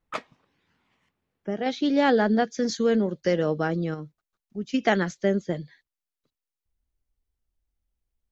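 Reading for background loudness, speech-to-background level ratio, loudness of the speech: -37.5 LUFS, 12.5 dB, -25.0 LUFS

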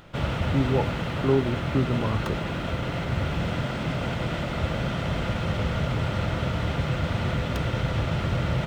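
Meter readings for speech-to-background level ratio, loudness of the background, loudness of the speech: 0.0 dB, -28.0 LUFS, -28.0 LUFS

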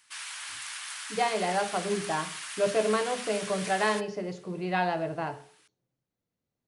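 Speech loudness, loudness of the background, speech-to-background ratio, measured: -30.0 LUFS, -37.0 LUFS, 7.0 dB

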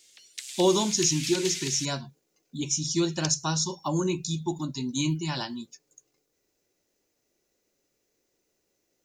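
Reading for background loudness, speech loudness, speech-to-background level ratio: -34.5 LUFS, -27.5 LUFS, 7.0 dB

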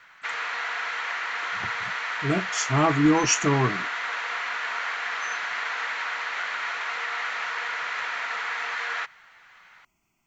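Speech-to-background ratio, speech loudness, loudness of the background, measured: 5.0 dB, -23.5 LUFS, -28.5 LUFS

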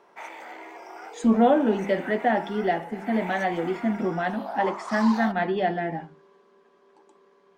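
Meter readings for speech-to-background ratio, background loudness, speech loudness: 12.5 dB, -37.5 LUFS, -25.0 LUFS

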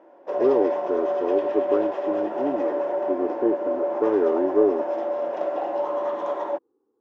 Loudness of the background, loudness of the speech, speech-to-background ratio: -26.5 LUFS, -25.5 LUFS, 1.0 dB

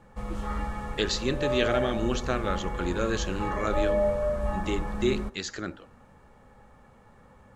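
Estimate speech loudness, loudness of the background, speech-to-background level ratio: -30.5 LUFS, -31.5 LUFS, 1.0 dB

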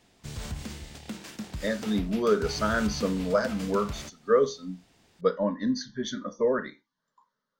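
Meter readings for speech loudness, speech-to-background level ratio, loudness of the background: -28.0 LUFS, 11.0 dB, -39.0 LUFS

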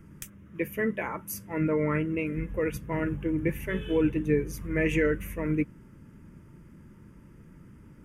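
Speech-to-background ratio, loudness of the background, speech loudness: 17.0 dB, -46.0 LUFS, -29.0 LUFS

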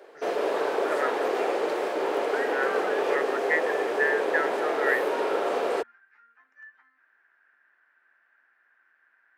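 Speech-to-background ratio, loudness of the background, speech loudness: -3.5 dB, -27.0 LUFS, -30.5 LUFS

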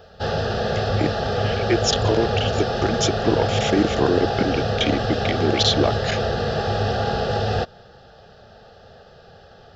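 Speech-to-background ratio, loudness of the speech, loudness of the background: -0.5 dB, -23.5 LUFS, -23.0 LUFS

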